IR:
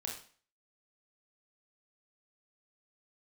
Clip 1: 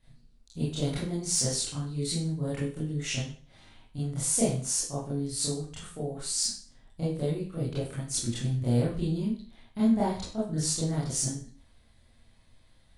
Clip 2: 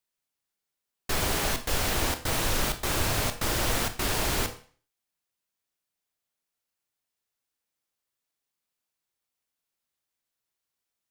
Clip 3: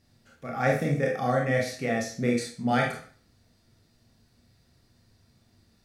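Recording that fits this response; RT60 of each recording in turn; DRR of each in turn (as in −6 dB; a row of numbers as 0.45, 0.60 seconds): 3; 0.45, 0.45, 0.45 seconds; −10.0, 8.5, −1.0 decibels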